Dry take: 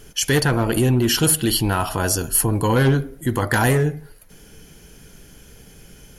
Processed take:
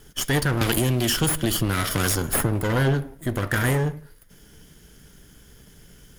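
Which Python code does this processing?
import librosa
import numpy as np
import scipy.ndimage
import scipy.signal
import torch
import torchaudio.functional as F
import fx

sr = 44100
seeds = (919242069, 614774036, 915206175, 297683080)

y = fx.lower_of_two(x, sr, delay_ms=0.59)
y = fx.band_squash(y, sr, depth_pct=100, at=(0.61, 2.63))
y = F.gain(torch.from_numpy(y), -3.5).numpy()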